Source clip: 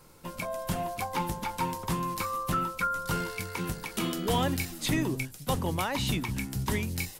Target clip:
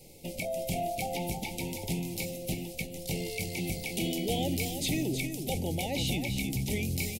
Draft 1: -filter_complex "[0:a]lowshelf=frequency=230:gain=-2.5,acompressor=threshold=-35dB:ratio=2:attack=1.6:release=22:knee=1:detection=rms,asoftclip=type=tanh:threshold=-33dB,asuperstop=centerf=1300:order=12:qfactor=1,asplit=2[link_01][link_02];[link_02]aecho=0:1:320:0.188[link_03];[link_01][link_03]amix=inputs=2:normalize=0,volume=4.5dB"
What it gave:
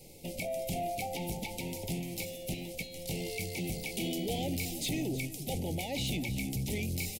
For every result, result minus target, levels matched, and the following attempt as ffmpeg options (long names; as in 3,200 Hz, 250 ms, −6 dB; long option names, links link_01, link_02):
soft clipping: distortion +17 dB; echo-to-direct −7 dB
-filter_complex "[0:a]lowshelf=frequency=230:gain=-2.5,acompressor=threshold=-35dB:ratio=2:attack=1.6:release=22:knee=1:detection=rms,asoftclip=type=tanh:threshold=-21.5dB,asuperstop=centerf=1300:order=12:qfactor=1,asplit=2[link_01][link_02];[link_02]aecho=0:1:320:0.188[link_03];[link_01][link_03]amix=inputs=2:normalize=0,volume=4.5dB"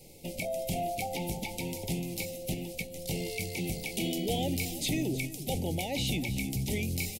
echo-to-direct −7 dB
-filter_complex "[0:a]lowshelf=frequency=230:gain=-2.5,acompressor=threshold=-35dB:ratio=2:attack=1.6:release=22:knee=1:detection=rms,asoftclip=type=tanh:threshold=-21.5dB,asuperstop=centerf=1300:order=12:qfactor=1,asplit=2[link_01][link_02];[link_02]aecho=0:1:320:0.422[link_03];[link_01][link_03]amix=inputs=2:normalize=0,volume=4.5dB"